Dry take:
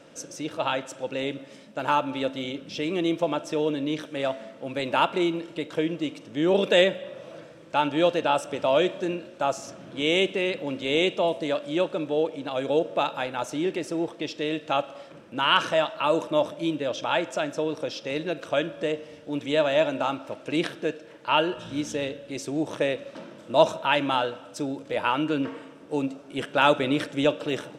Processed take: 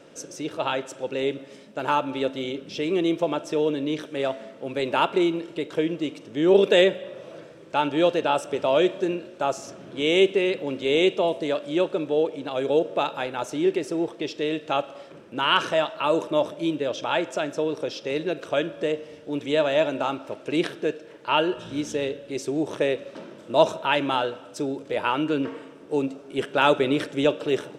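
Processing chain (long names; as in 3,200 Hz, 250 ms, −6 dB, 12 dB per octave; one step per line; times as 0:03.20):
parametric band 400 Hz +9 dB 0.27 octaves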